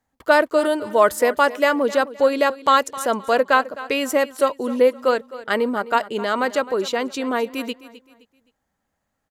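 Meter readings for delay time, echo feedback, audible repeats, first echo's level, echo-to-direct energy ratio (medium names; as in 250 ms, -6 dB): 260 ms, 33%, 2, -16.5 dB, -16.0 dB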